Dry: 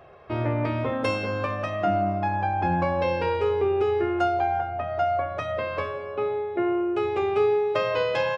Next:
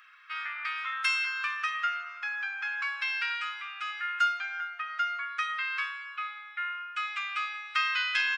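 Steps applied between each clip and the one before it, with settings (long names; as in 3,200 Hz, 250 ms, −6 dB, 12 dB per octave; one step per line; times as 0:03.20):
Chebyshev high-pass filter 1,300 Hz, order 5
level +5.5 dB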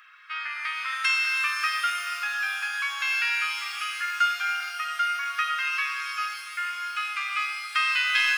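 reverb with rising layers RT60 3.5 s, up +12 semitones, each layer −8 dB, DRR 3.5 dB
level +3 dB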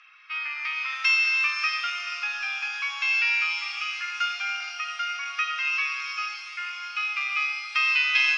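loudspeaker in its box 500–5,900 Hz, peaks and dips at 800 Hz +6 dB, 1,600 Hz −7 dB, 2,500 Hz +8 dB, 5,600 Hz +8 dB
level −2.5 dB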